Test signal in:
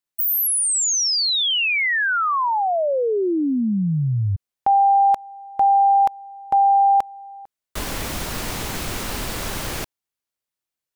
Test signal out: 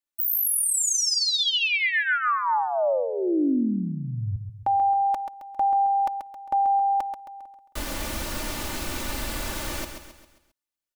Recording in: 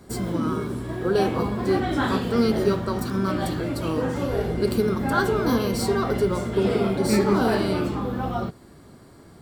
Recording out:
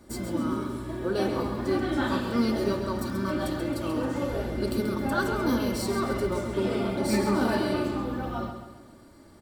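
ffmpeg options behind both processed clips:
-af "aecho=1:1:3.4:0.55,aecho=1:1:134|268|402|536|670:0.398|0.183|0.0842|0.0388|0.0178,volume=-5.5dB"

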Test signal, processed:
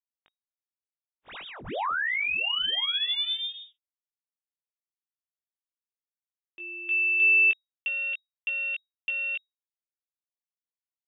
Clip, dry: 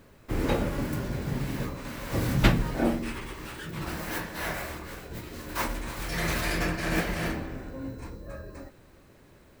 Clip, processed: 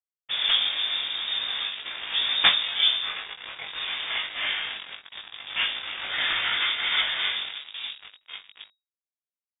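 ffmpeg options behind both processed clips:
-filter_complex "[0:a]highpass=200,aresample=16000,acrusher=bits=5:mix=0:aa=0.5,aresample=44100,asplit=2[a][b];[b]adelay=20,volume=-4.5dB[c];[a][c]amix=inputs=2:normalize=0,lowpass=f=3.2k:t=q:w=0.5098,lowpass=f=3.2k:t=q:w=0.6013,lowpass=f=3.2k:t=q:w=0.9,lowpass=f=3.2k:t=q:w=2.563,afreqshift=-3800,volume=4dB"

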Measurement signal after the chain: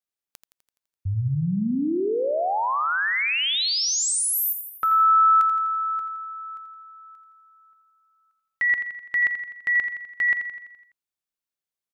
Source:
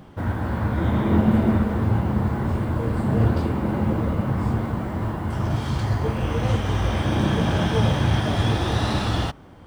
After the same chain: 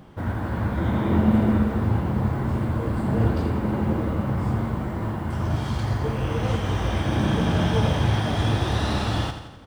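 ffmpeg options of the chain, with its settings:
-af "aecho=1:1:84|168|252|336|420|504|588:0.355|0.199|0.111|0.0623|0.0349|0.0195|0.0109,volume=-2dB"

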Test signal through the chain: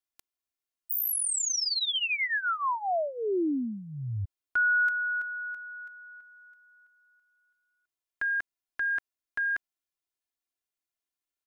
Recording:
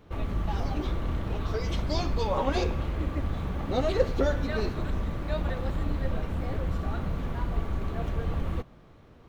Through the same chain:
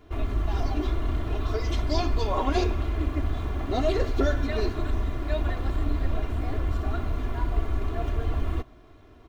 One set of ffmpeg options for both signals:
-af "aecho=1:1:2.9:0.74"

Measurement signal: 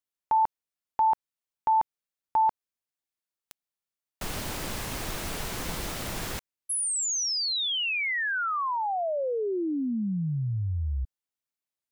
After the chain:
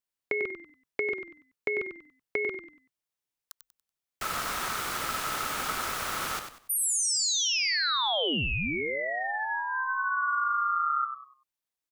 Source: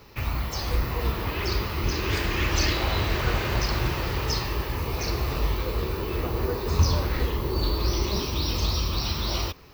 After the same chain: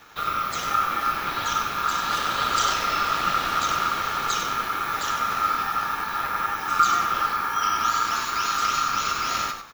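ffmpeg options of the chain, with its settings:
-filter_complex "[0:a]acrossover=split=160|1700[a][b][c];[b]acompressor=threshold=-31dB:ratio=10:release=355:knee=2.83:detection=peak[d];[a][d][c]amix=inputs=3:normalize=0,aeval=exprs='val(0)*sin(2*PI*1300*n/s)':c=same,asplit=5[e][f][g][h][i];[f]adelay=95,afreqshift=-39,volume=-8dB[j];[g]adelay=190,afreqshift=-78,volume=-18.5dB[k];[h]adelay=285,afreqshift=-117,volume=-28.9dB[l];[i]adelay=380,afreqshift=-156,volume=-39.4dB[m];[e][j][k][l][m]amix=inputs=5:normalize=0,volume=3.5dB"

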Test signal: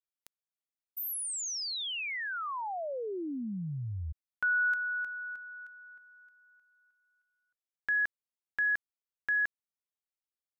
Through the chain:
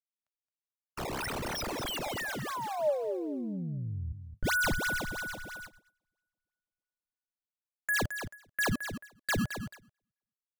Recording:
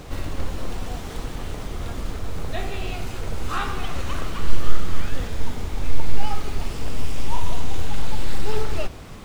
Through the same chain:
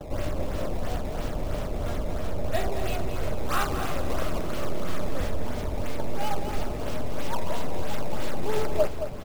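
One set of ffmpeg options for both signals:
-filter_complex "[0:a]acrossover=split=120|880[a][b][c];[a]acompressor=threshold=-25dB:ratio=6:release=44[d];[b]equalizer=f=600:t=o:w=0.25:g=13[e];[c]acrusher=samples=17:mix=1:aa=0.000001:lfo=1:lforange=27.2:lforate=3[f];[d][e][f]amix=inputs=3:normalize=0,aecho=1:1:219|438|657|876:0.355|0.121|0.041|0.0139,agate=range=-32dB:threshold=-45dB:ratio=16:release=297:detection=peak"

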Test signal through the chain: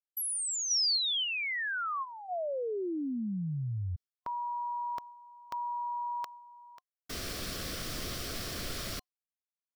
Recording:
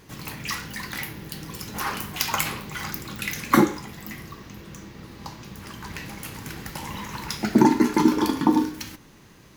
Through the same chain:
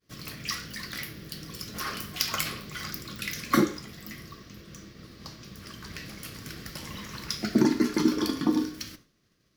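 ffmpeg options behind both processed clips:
-af "superequalizer=9b=0.282:13b=1.41:14b=2,agate=range=-33dB:threshold=-40dB:ratio=3:detection=peak,volume=-5dB"

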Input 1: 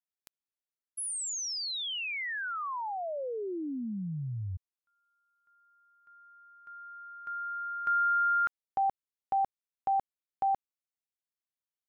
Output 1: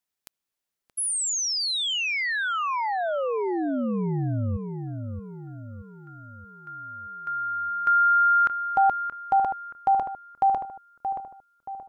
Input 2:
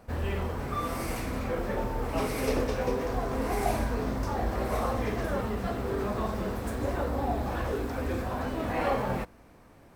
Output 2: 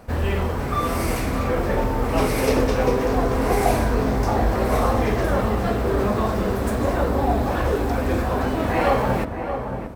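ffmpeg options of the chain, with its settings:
-filter_complex "[0:a]asplit=2[a][b];[b]adelay=626,lowpass=f=1.4k:p=1,volume=-7dB,asplit=2[c][d];[d]adelay=626,lowpass=f=1.4k:p=1,volume=0.49,asplit=2[e][f];[f]adelay=626,lowpass=f=1.4k:p=1,volume=0.49,asplit=2[g][h];[h]adelay=626,lowpass=f=1.4k:p=1,volume=0.49,asplit=2[i][j];[j]adelay=626,lowpass=f=1.4k:p=1,volume=0.49,asplit=2[k][l];[l]adelay=626,lowpass=f=1.4k:p=1,volume=0.49[m];[a][c][e][g][i][k][m]amix=inputs=7:normalize=0,volume=8.5dB"

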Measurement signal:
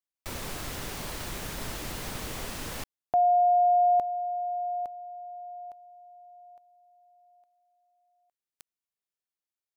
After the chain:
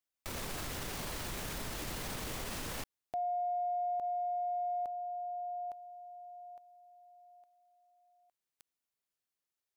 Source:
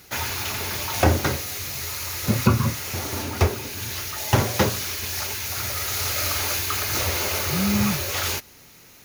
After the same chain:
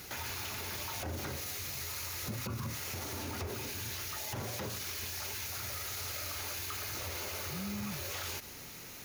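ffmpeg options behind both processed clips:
-af "acompressor=threshold=-34dB:ratio=12:attack=0.14:release=53:knee=1:detection=rms,volume=1.5dB"

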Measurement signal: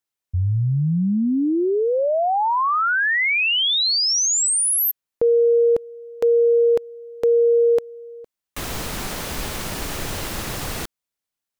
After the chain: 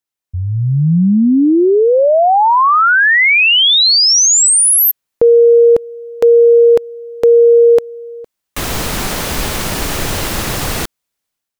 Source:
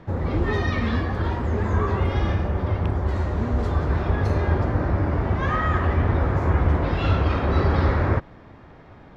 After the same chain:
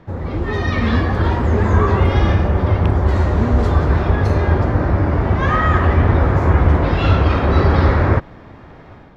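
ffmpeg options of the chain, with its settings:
-af "dynaudnorm=f=470:g=3:m=10dB"

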